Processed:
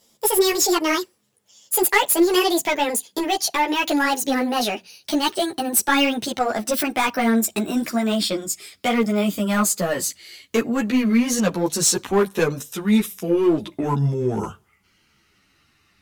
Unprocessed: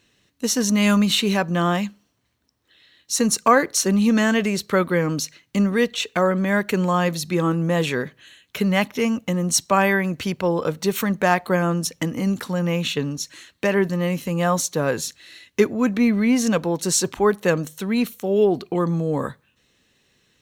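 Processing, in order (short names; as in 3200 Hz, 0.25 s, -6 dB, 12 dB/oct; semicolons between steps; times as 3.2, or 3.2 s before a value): speed glide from 187% -> 68%; high shelf 6000 Hz +6.5 dB; in parallel at -5.5 dB: wavefolder -15.5 dBFS; on the sum: ensemble effect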